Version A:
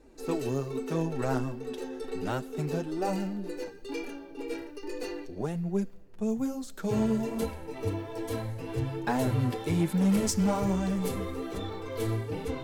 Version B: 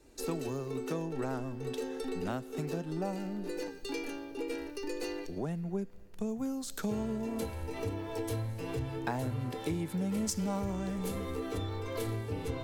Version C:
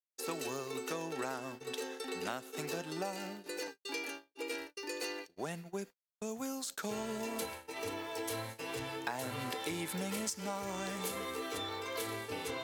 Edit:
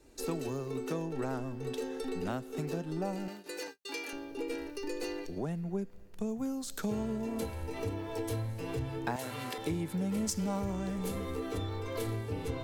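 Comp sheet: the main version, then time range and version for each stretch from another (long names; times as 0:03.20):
B
0:03.28–0:04.13: punch in from C
0:09.16–0:09.58: punch in from C
not used: A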